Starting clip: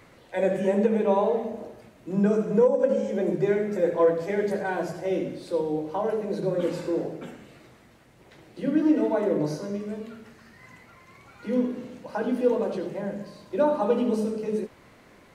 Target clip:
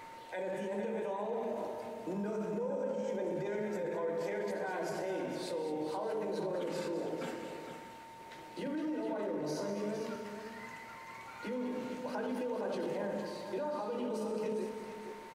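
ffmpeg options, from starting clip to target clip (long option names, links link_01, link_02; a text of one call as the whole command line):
ffmpeg -i in.wav -af "equalizer=frequency=73:width=0.36:gain=-11.5,acompressor=threshold=-29dB:ratio=6,alimiter=level_in=8.5dB:limit=-24dB:level=0:latency=1:release=22,volume=-8.5dB,aeval=exprs='val(0)+0.00316*sin(2*PI*910*n/s)':channel_layout=same,aecho=1:1:207|458|626:0.282|0.376|0.158,volume=1.5dB" out.wav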